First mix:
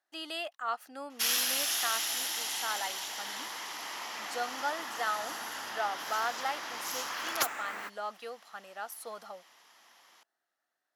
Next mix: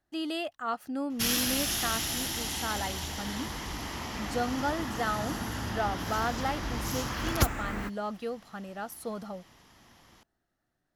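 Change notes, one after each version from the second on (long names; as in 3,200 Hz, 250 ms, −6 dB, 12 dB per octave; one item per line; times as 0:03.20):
master: remove high-pass filter 710 Hz 12 dB per octave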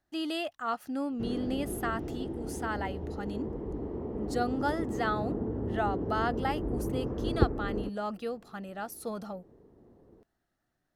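background: add low-pass with resonance 430 Hz, resonance Q 4.3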